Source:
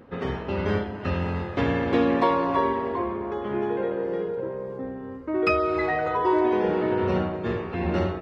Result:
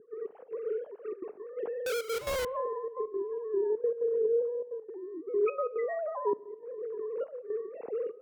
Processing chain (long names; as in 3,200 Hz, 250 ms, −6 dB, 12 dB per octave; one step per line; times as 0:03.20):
three sine waves on the formant tracks
spectral tilt −1.5 dB per octave
0:06.33–0:07.32: compressor whose output falls as the input rises −29 dBFS, ratio −0.5
resonant band-pass 240 Hz, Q 1.3
0:01.86–0:02.45: comparator with hysteresis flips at −38 dBFS
gate pattern "xxx.x.xxxx" 172 BPM −12 dB
on a send: high-frequency loss of the air 170 metres + convolution reverb RT60 0.95 s, pre-delay 32 ms, DRR 21.5 dB